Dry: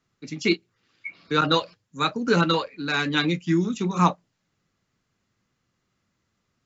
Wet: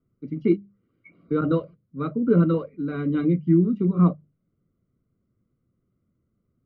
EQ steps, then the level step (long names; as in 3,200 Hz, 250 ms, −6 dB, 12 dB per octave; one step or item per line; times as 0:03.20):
moving average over 51 samples
high-frequency loss of the air 330 metres
mains-hum notches 50/100/150/200 Hz
+6.0 dB